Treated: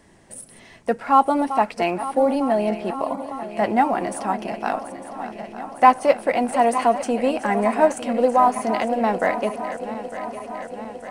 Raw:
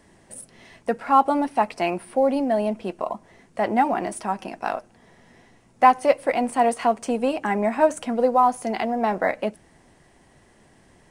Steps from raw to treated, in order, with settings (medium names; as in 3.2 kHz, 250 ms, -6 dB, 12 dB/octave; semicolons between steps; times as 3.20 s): backward echo that repeats 452 ms, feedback 81%, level -12.5 dB; trim +1.5 dB